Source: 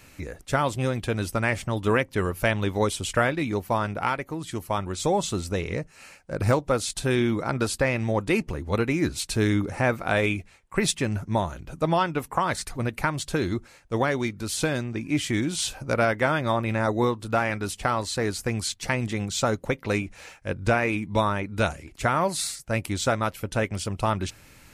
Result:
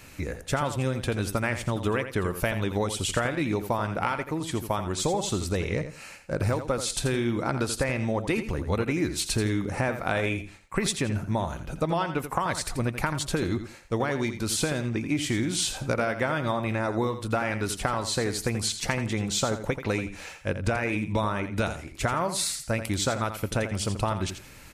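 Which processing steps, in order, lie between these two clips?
compression, threshold -26 dBFS, peak gain reduction 10 dB; on a send: feedback delay 84 ms, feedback 22%, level -10 dB; on the sum: trim +3 dB

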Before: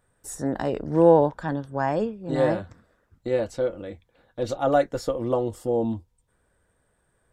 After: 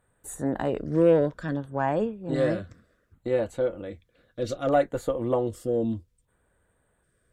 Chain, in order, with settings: Chebyshev shaper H 5 -26 dB, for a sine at -4.5 dBFS; LFO notch square 0.64 Hz 860–5300 Hz; trim -2.5 dB

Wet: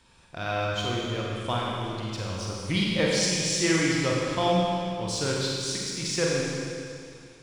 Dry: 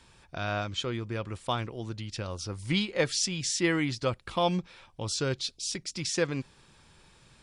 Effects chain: in parallel at -9 dB: crossover distortion -39.5 dBFS; on the sum: Schroeder reverb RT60 2.4 s, combs from 33 ms, DRR -3.5 dB; trim -3 dB

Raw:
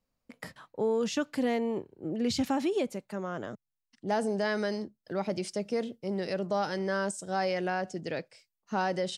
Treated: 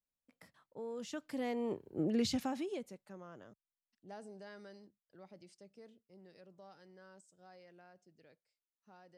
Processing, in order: Doppler pass-by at 1.97 s, 11 m/s, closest 1.9 m; treble shelf 11 kHz +5.5 dB; trim +1 dB

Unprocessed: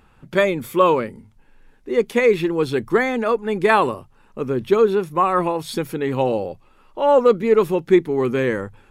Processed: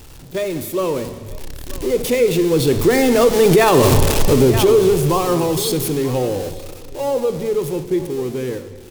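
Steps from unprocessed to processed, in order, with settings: jump at every zero crossing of -20.5 dBFS; Doppler pass-by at 3.85 s, 8 m/s, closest 1.7 m; peaking EQ 1.4 kHz -13.5 dB 2.3 oct; delay 932 ms -19 dB; in parallel at -2.5 dB: compression, threshold -43 dBFS, peak gain reduction 21.5 dB; on the sum: gate -44 dBFS, range -10 dB; peaking EQ 210 Hz -14.5 dB 0.21 oct; on a send at -9 dB: reverberation RT60 1.6 s, pre-delay 22 ms; on the sum: loudness maximiser +23 dB; trim -3.5 dB

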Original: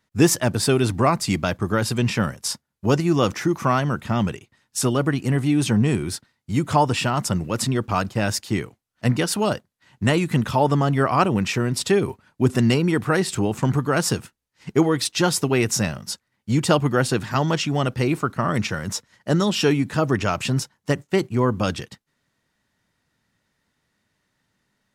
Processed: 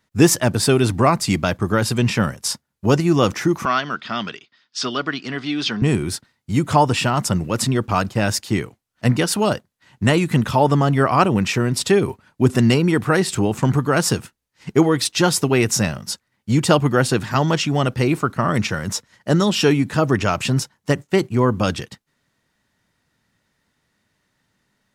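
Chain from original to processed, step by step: 3.65–5.82 s: cabinet simulation 350–5300 Hz, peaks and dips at 350 Hz -5 dB, 520 Hz -10 dB, 860 Hz -8 dB, 1.4 kHz +3 dB, 3.4 kHz +7 dB, 4.8 kHz +8 dB; trim +3 dB

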